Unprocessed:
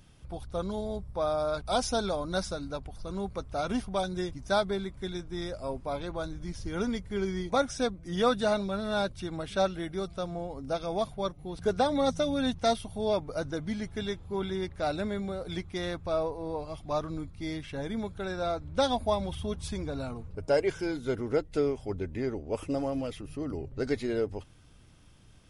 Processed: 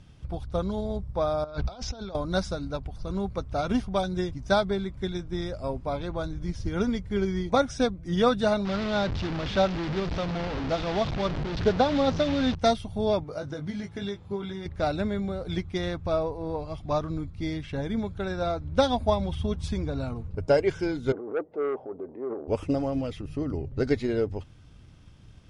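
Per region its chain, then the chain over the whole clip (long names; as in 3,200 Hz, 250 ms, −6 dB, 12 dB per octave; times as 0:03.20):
0:01.44–0:02.15: low-pass filter 6,100 Hz 24 dB per octave + compressor whose output falls as the input rises −40 dBFS
0:08.65–0:12.55: linear delta modulator 64 kbit/s, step −28 dBFS + low-pass filter 5,100 Hz 24 dB per octave
0:13.24–0:14.66: high-pass filter 180 Hz 6 dB per octave + downward compressor 2.5 to 1, threshold −36 dBFS + double-tracking delay 20 ms −5.5 dB
0:21.12–0:22.48: transient designer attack −7 dB, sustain +10 dB + flat-topped band-pass 570 Hz, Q 1 + saturating transformer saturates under 730 Hz
whole clip: low-pass filter 6,600 Hz 12 dB per octave; parametric band 86 Hz +6 dB 2.8 octaves; transient designer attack +4 dB, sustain 0 dB; level +1 dB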